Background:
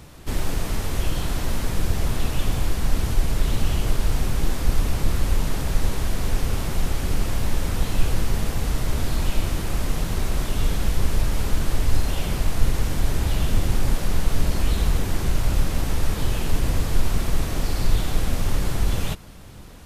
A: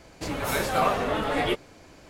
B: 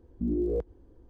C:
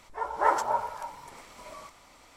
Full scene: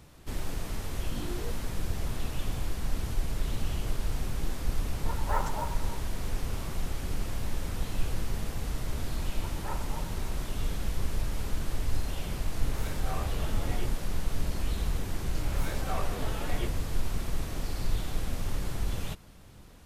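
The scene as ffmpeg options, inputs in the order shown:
ffmpeg -i bed.wav -i cue0.wav -i cue1.wav -i cue2.wav -filter_complex "[3:a]asplit=2[link_01][link_02];[1:a]asplit=2[link_03][link_04];[0:a]volume=-9.5dB[link_05];[link_01]acrusher=bits=7:mode=log:mix=0:aa=0.000001[link_06];[link_02]afreqshift=-15[link_07];[link_03]asplit=2[link_08][link_09];[link_09]adelay=25,volume=-4dB[link_10];[link_08][link_10]amix=inputs=2:normalize=0[link_11];[link_04]flanger=delay=16:depth=7:speed=1.4[link_12];[2:a]atrim=end=1.09,asetpts=PTS-STARTPTS,volume=-12.5dB,afade=type=in:duration=0.004:curve=hsin,afade=type=out:start_time=1.086:duration=0.004:curve=hsin,adelay=910[link_13];[link_06]atrim=end=2.36,asetpts=PTS-STARTPTS,volume=-8.5dB,afade=type=in:duration=0.004:curve=hsin,afade=type=out:start_time=2.356:duration=0.004:curve=hsin,adelay=4880[link_14];[link_07]atrim=end=2.36,asetpts=PTS-STARTPTS,volume=-17dB,afade=type=in:duration=0.004:curve=hsin,afade=type=out:start_time=2.356:duration=0.004:curve=hsin,adelay=9230[link_15];[link_11]atrim=end=2.09,asetpts=PTS-STARTPTS,volume=-18dB,afade=type=in:duration=0.004:curve=hsin,afade=type=out:start_time=2.086:duration=0.004:curve=hsin,adelay=12310[link_16];[link_12]atrim=end=2.09,asetpts=PTS-STARTPTS,volume=-10.5dB,afade=type=in:duration=0.004:curve=hsin,afade=type=out:start_time=2.086:duration=0.004:curve=hsin,adelay=15120[link_17];[link_05][link_13][link_14][link_15][link_16][link_17]amix=inputs=6:normalize=0" out.wav

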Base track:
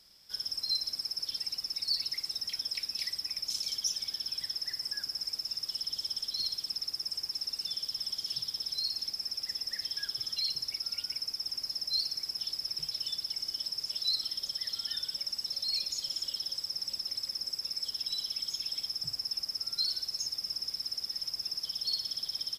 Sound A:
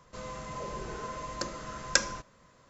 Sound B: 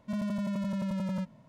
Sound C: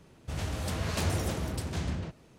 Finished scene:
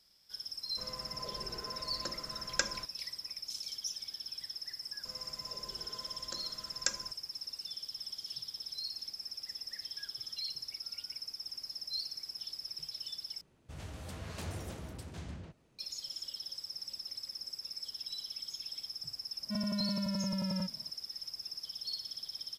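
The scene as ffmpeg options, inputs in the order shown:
ffmpeg -i bed.wav -i cue0.wav -i cue1.wav -i cue2.wav -filter_complex "[1:a]asplit=2[link_01][link_02];[0:a]volume=-7dB[link_03];[link_02]highshelf=frequency=4800:gain=11.5[link_04];[link_03]asplit=2[link_05][link_06];[link_05]atrim=end=13.414[link_07];[3:a]atrim=end=2.38,asetpts=PTS-STARTPTS,volume=-11.5dB[link_08];[link_06]atrim=start=15.786[link_09];[link_01]atrim=end=2.69,asetpts=PTS-STARTPTS,volume=-7dB,afade=type=in:duration=0.004:curve=hsin,afade=type=out:start_time=2.686:duration=0.004:curve=hsin,adelay=640[link_10];[link_04]atrim=end=2.69,asetpts=PTS-STARTPTS,volume=-13.5dB,afade=type=in:duration=0.004:curve=hsin,afade=type=out:start_time=2.686:duration=0.004:curve=hsin,adelay=4910[link_11];[2:a]atrim=end=1.48,asetpts=PTS-STARTPTS,volume=-3dB,afade=type=in:duration=0.004:curve=hsin,afade=type=out:start_time=1.476:duration=0.004:curve=hsin,adelay=19420[link_12];[link_07][link_08]acrossfade=duration=0.004:curve1=hsin:curve2=hsin[link_13];[link_13][link_09]acrossfade=duration=0.004:curve1=hsin:curve2=hsin[link_14];[link_14][link_10][link_11][link_12]amix=inputs=4:normalize=0" out.wav

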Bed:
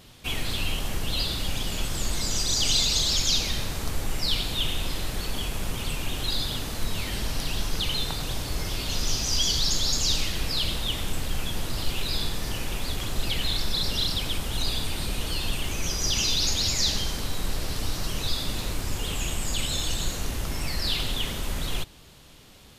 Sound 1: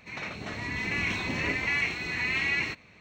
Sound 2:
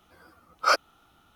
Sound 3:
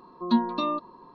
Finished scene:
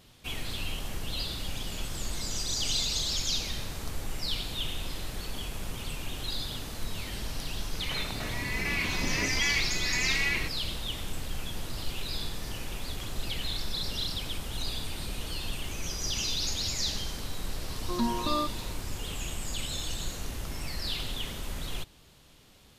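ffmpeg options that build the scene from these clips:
ffmpeg -i bed.wav -i cue0.wav -i cue1.wav -i cue2.wav -filter_complex "[0:a]volume=-6.5dB[link_01];[3:a]alimiter=limit=-18dB:level=0:latency=1:release=71[link_02];[1:a]atrim=end=3,asetpts=PTS-STARTPTS,volume=-1.5dB,afade=type=in:duration=0.004:curve=hsin,afade=type=out:start_time=2.996:duration=0.004:curve=hsin,adelay=7740[link_03];[link_02]atrim=end=1.14,asetpts=PTS-STARTPTS,volume=-1.5dB,afade=type=in:duration=0.004:curve=hsin,afade=type=out:start_time=1.136:duration=0.004:curve=hsin,adelay=17680[link_04];[link_01][link_03][link_04]amix=inputs=3:normalize=0" out.wav

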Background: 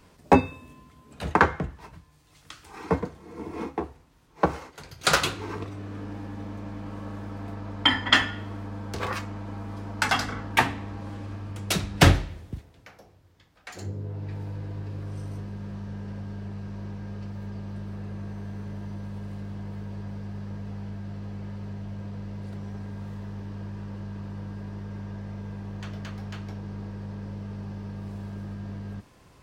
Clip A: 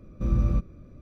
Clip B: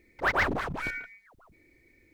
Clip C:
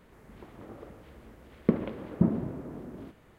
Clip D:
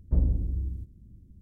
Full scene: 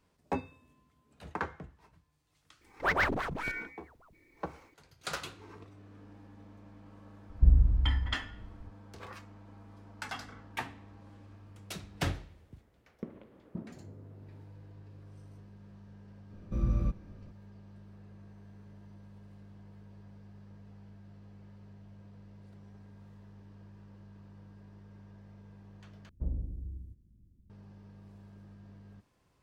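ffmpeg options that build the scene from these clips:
ffmpeg -i bed.wav -i cue0.wav -i cue1.wav -i cue2.wav -i cue3.wav -filter_complex "[4:a]asplit=2[link_01][link_02];[0:a]volume=-16.5dB[link_03];[link_01]aemphasis=mode=reproduction:type=riaa[link_04];[link_03]asplit=2[link_05][link_06];[link_05]atrim=end=26.094[link_07];[link_02]atrim=end=1.41,asetpts=PTS-STARTPTS,volume=-11dB[link_08];[link_06]atrim=start=27.496[link_09];[2:a]atrim=end=2.13,asetpts=PTS-STARTPTS,volume=-2.5dB,afade=type=in:duration=0.004:curve=hsin,afade=type=out:start_time=2.126:duration=0.004:curve=hsin,adelay=2610[link_10];[link_04]atrim=end=1.41,asetpts=PTS-STARTPTS,volume=-13.5dB,afade=type=in:duration=0.004:curve=hsin,afade=type=out:start_time=1.406:duration=0.004:curve=hsin,adelay=321930S[link_11];[3:a]atrim=end=3.38,asetpts=PTS-STARTPTS,volume=-17.5dB,afade=type=in:duration=0.004:curve=hsin,afade=type=out:start_time=3.376:duration=0.004:curve=hsin,adelay=11340[link_12];[1:a]atrim=end=1.01,asetpts=PTS-STARTPTS,volume=-6dB,afade=type=in:duration=0.004:curve=hsin,afade=type=out:start_time=1.006:duration=0.004:curve=hsin,adelay=16310[link_13];[link_07][link_08]acrossfade=duration=0.004:curve1=hsin:curve2=hsin[link_14];[link_14][link_09]acrossfade=duration=0.004:curve1=hsin:curve2=hsin[link_15];[link_15][link_10][link_11][link_12][link_13]amix=inputs=5:normalize=0" out.wav

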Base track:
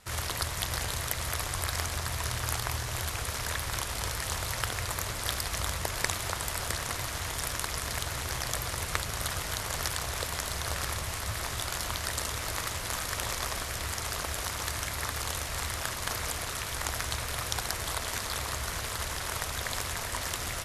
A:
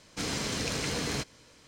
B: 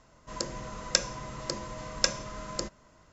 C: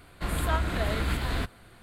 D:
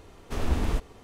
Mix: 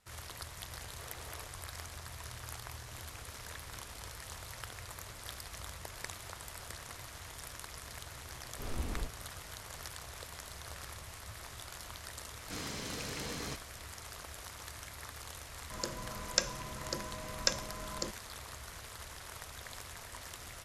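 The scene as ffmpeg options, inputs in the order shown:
ffmpeg -i bed.wav -i cue0.wav -i cue1.wav -i cue2.wav -i cue3.wav -filter_complex "[4:a]asplit=2[link_01][link_02];[1:a]asplit=2[link_03][link_04];[0:a]volume=-13.5dB[link_05];[link_01]highpass=frequency=430:width=0.5412,highpass=frequency=430:width=1.3066[link_06];[link_03]acompressor=threshold=-46dB:ratio=6:attack=3.2:release=140:knee=1:detection=peak[link_07];[link_06]atrim=end=1.03,asetpts=PTS-STARTPTS,volume=-16.5dB,afade=type=in:duration=0.004:curve=hsin,afade=type=out:start_time=1.026:duration=0.004:curve=hsin,adelay=670[link_08];[link_07]atrim=end=1.67,asetpts=PTS-STARTPTS,volume=-13.5dB,afade=type=in:duration=0.004:curve=hsin,afade=type=out:start_time=1.666:duration=0.004:curve=hsin,adelay=2750[link_09];[link_02]atrim=end=1.03,asetpts=PTS-STARTPTS,volume=-12dB,afade=type=in:duration=0.004:curve=hsin,afade=type=out:start_time=1.026:duration=0.004:curve=hsin,adelay=8280[link_10];[link_04]atrim=end=1.67,asetpts=PTS-STARTPTS,volume=-9.5dB,afade=type=in:duration=0.004:curve=hsin,afade=type=out:start_time=1.666:duration=0.004:curve=hsin,adelay=12330[link_11];[2:a]atrim=end=3.12,asetpts=PTS-STARTPTS,volume=-4.5dB,afade=type=in:duration=0.004:curve=hsin,afade=type=out:start_time=3.116:duration=0.004:curve=hsin,adelay=15430[link_12];[link_05][link_08][link_09][link_10][link_11][link_12]amix=inputs=6:normalize=0" out.wav

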